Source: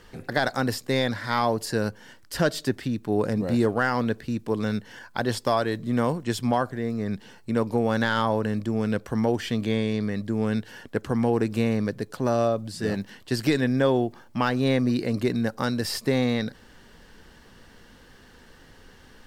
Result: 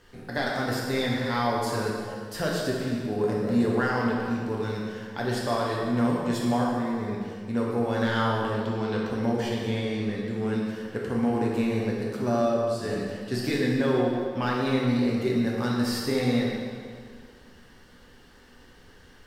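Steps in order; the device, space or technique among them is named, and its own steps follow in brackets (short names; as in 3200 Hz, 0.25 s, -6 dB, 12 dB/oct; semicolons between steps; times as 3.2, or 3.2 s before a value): 8.54–9.1 fifteen-band EQ 1000 Hz +8 dB, 4000 Hz +10 dB, 10000 Hz -10 dB; stairwell (reverb RT60 2.1 s, pre-delay 5 ms, DRR -4 dB); gain -7 dB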